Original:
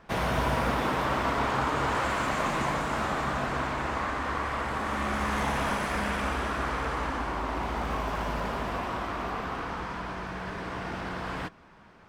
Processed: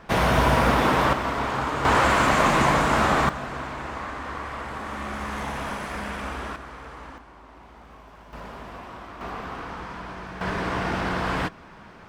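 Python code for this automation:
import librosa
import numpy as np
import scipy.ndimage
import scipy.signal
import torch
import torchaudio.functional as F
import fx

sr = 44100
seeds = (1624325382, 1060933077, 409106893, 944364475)

y = fx.gain(x, sr, db=fx.steps((0.0, 7.5), (1.13, 1.0), (1.85, 9.0), (3.29, -2.5), (6.56, -10.0), (7.18, -16.5), (8.33, -7.5), (9.21, -1.0), (10.41, 8.5)))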